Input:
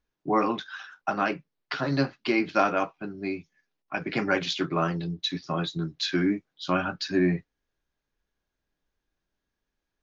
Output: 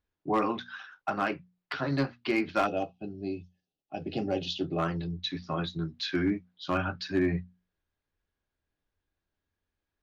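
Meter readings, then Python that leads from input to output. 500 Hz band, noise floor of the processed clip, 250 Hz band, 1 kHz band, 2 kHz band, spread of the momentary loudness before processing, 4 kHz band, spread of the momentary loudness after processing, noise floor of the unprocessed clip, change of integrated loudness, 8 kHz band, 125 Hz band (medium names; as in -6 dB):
-3.0 dB, under -85 dBFS, -3.5 dB, -4.0 dB, -5.0 dB, 9 LU, -4.5 dB, 9 LU, -84 dBFS, -3.5 dB, no reading, -2.5 dB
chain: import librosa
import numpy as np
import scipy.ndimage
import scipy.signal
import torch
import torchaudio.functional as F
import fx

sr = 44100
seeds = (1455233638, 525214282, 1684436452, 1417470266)

y = fx.spec_box(x, sr, start_s=2.67, length_s=2.12, low_hz=840.0, high_hz=2500.0, gain_db=-19)
y = scipy.signal.sosfilt(scipy.signal.butter(2, 4600.0, 'lowpass', fs=sr, output='sos'), y)
y = fx.peak_eq(y, sr, hz=88.0, db=13.5, octaves=0.32)
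y = fx.hum_notches(y, sr, base_hz=60, count=4)
y = fx.clip_asym(y, sr, top_db=-17.0, bottom_db=-15.0)
y = y * librosa.db_to_amplitude(-3.0)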